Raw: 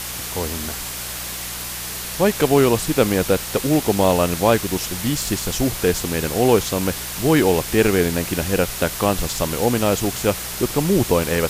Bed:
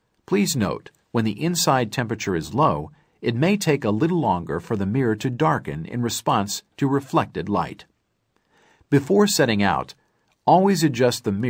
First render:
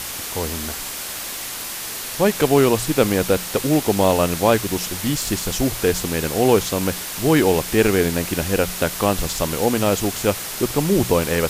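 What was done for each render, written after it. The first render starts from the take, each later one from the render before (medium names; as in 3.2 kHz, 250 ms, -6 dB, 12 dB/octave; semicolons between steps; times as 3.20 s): de-hum 60 Hz, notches 3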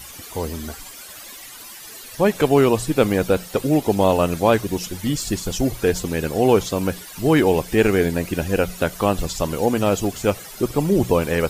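noise reduction 14 dB, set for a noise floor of -30 dBFS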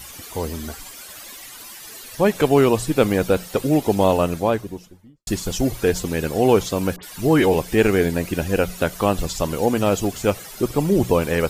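4.02–5.27 s: studio fade out; 6.96–7.54 s: phase dispersion highs, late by 71 ms, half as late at 2.3 kHz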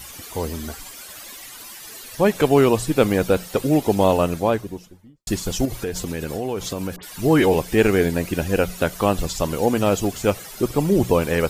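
5.65–7.12 s: compression, threshold -22 dBFS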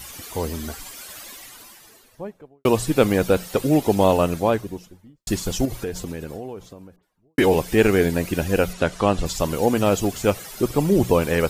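1.13–2.65 s: studio fade out; 5.36–7.38 s: studio fade out; 8.73–9.26 s: Bessel low-pass 6.9 kHz, order 4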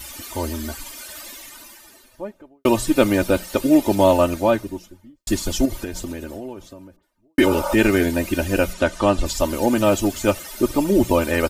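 7.49–7.71 s: spectral replace 530–1500 Hz before; comb 3.3 ms, depth 75%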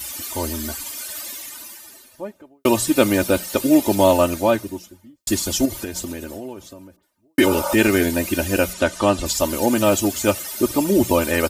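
high-pass 66 Hz; treble shelf 4.6 kHz +7.5 dB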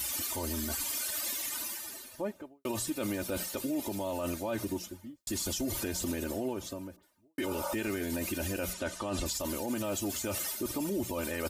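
reverse; compression 12:1, threshold -24 dBFS, peak gain reduction 15 dB; reverse; peak limiter -25 dBFS, peak gain reduction 10.5 dB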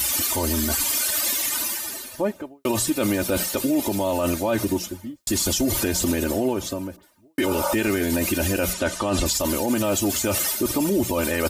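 trim +11.5 dB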